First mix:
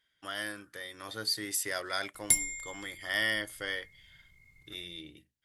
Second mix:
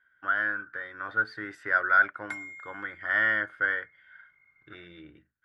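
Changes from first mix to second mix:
background: add high-pass 860 Hz 6 dB/octave; master: add resonant low-pass 1.5 kHz, resonance Q 10

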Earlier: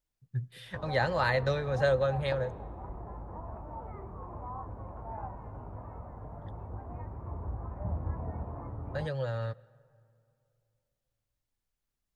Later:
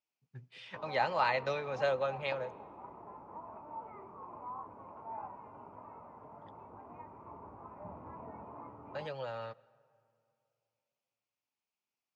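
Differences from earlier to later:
background: add peaking EQ 740 Hz -8 dB 0.26 oct; master: add cabinet simulation 320–6000 Hz, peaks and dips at 350 Hz -4 dB, 520 Hz -6 dB, 880 Hz +3 dB, 1.7 kHz -9 dB, 2.5 kHz +7 dB, 3.8 kHz -6 dB

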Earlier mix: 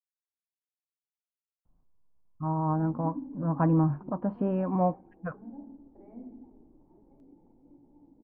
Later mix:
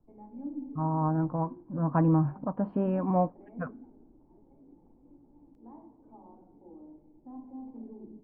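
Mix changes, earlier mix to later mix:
speech: entry -1.65 s; background: entry -2.60 s

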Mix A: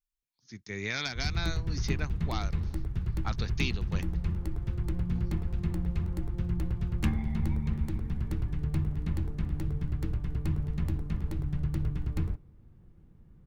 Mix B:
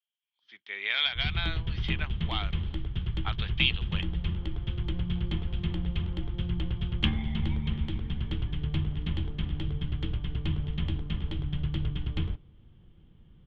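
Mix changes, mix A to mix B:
speech: add Butterworth band-pass 1.4 kHz, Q 0.57; master: add resonant low-pass 3.2 kHz, resonance Q 15

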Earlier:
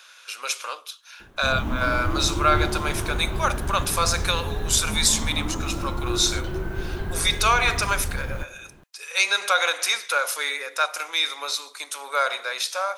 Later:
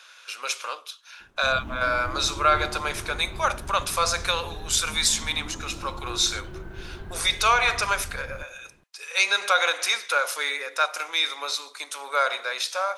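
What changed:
background -9.5 dB; master: add treble shelf 10 kHz -9 dB

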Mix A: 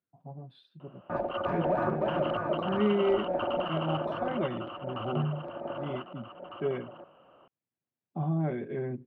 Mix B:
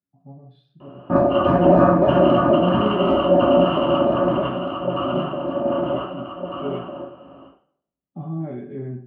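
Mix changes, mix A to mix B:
speech -6.0 dB; reverb: on, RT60 0.55 s

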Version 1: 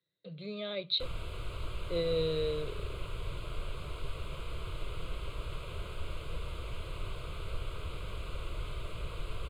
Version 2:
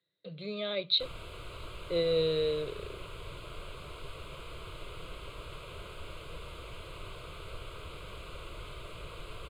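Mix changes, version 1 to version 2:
speech +4.0 dB; master: add bass shelf 140 Hz -9 dB

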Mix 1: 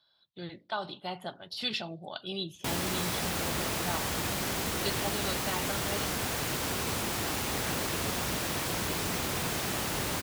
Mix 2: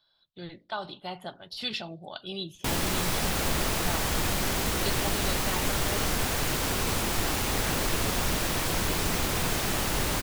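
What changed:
background +3.5 dB; master: remove high-pass 78 Hz 12 dB/octave

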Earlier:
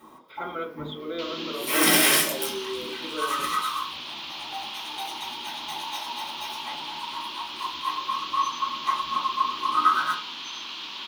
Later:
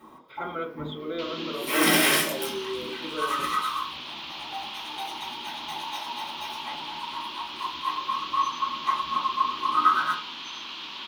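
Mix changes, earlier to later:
speech: remove band-pass 140–6900 Hz; master: add tone controls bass +2 dB, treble -5 dB

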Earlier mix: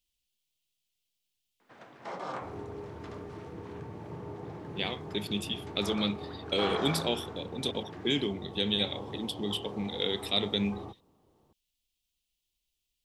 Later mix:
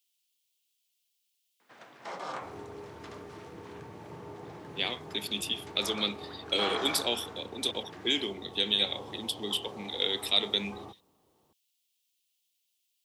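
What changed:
speech: add steep high-pass 210 Hz 36 dB/octave; master: add tilt EQ +2 dB/octave

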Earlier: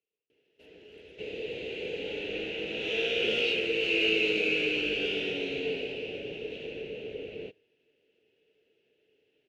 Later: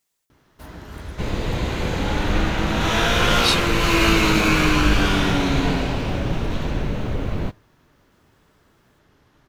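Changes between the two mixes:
speech: add tilt EQ +3.5 dB/octave; master: remove two resonant band-passes 1.1 kHz, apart 2.6 oct

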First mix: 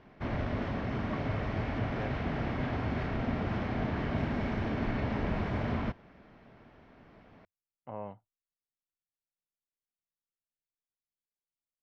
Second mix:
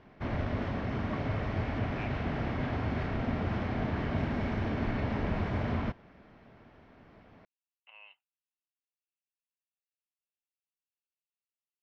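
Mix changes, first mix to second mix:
speech: add resonant high-pass 2.7 kHz, resonance Q 12; master: add peaking EQ 88 Hz +5 dB 0.22 oct

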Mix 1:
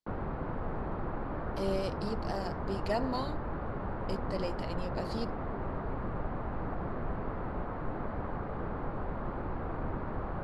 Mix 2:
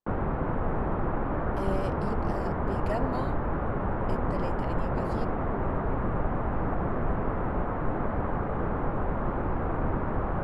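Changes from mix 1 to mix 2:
background +7.5 dB; master: add peaking EQ 4.5 kHz -11 dB 0.69 oct

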